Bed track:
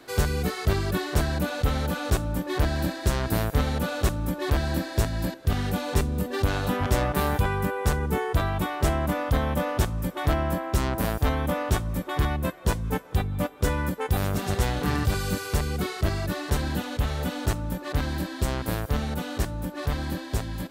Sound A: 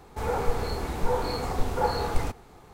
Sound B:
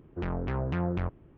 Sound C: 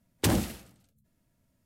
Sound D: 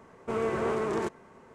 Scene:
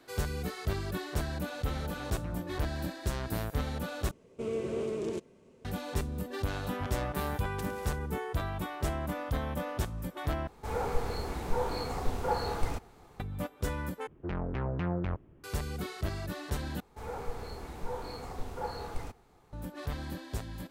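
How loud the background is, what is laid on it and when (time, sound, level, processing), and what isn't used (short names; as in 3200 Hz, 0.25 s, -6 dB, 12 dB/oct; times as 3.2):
bed track -9 dB
1.52 add B -13.5 dB
4.11 replace with D -3.5 dB + band shelf 1200 Hz -13.5 dB
7.35 add C -7.5 dB + compressor 3:1, threshold -37 dBFS
10.47 replace with A -5 dB
14.07 replace with B -2.5 dB
16.8 replace with A -11.5 dB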